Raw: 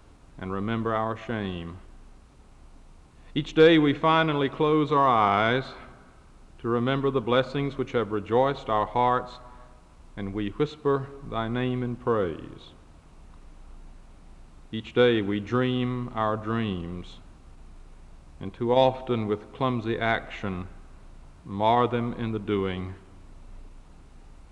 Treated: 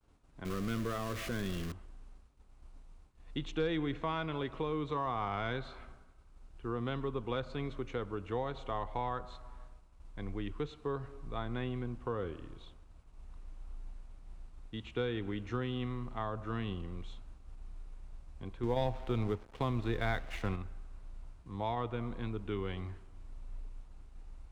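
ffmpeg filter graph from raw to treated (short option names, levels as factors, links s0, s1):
-filter_complex "[0:a]asettb=1/sr,asplit=3[s0][s1][s2];[s0]atrim=end=0.454[s3];[s1]atrim=start=0.45:end=1.72,asetpts=PTS-STARTPTS,afade=t=in:d=0.004:c=qsin,afade=t=out:st=1.266:d=0.004:c=qsin,aeval=exprs='val(0)+0.5*0.0422*sgn(val(0))':c=same,equalizer=f=850:t=o:w=0.43:g=-14.5[s4];[s2]atrim=start=1.716[s5];[s3][s4]acrossfade=d=0.004:c1=hsin:c2=qsin[s6];[s6][s5]acrossfade=d=0.004:c1=qsin:c2=hsin,asettb=1/sr,asplit=3[s7][s8][s9];[s7]atrim=end=18.634[s10];[s8]atrim=start=18.63:end=20.56,asetpts=PTS-STARTPTS,afade=t=in:d=0.004:c=qsin,afade=t=out:st=1.926:d=0.004:c=qsin,acontrast=72,aeval=exprs='sgn(val(0))*max(abs(val(0))-0.0126,0)':c=same[s11];[s9]atrim=start=20.556[s12];[s10][s11]acrossfade=d=0.004:c1=hsin:c2=qsin[s13];[s13][s12]acrossfade=d=0.004:c1=qsin:c2=hsin,acrossover=split=190[s14][s15];[s15]acompressor=threshold=0.0501:ratio=2.5[s16];[s14][s16]amix=inputs=2:normalize=0,agate=range=0.0224:threshold=0.00501:ratio=3:detection=peak,asubboost=boost=3:cutoff=83,volume=0.376"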